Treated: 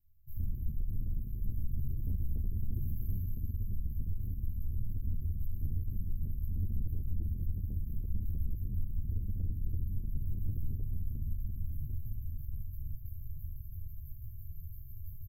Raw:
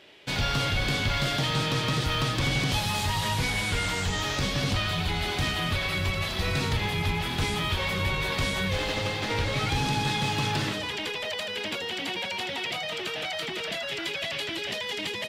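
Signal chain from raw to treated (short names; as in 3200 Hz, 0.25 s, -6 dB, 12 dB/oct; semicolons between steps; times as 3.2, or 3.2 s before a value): brick-wall FIR band-stop 160–12000 Hz; comb 3.4 ms, depth 71%; diffused feedback echo 1.343 s, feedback 48%, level -9 dB; reverb RT60 2.7 s, pre-delay 6 ms, DRR -5.5 dB; compressor 16:1, threshold -24 dBFS, peak gain reduction 9.5 dB; passive tone stack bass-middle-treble 10-0-1; 3.2–5.38 tremolo 17 Hz, depth 30%; high shelf 8000 Hz +11 dB; notches 50/100/150 Hz; soft clip -37 dBFS, distortion -11 dB; ensemble effect; gain +12 dB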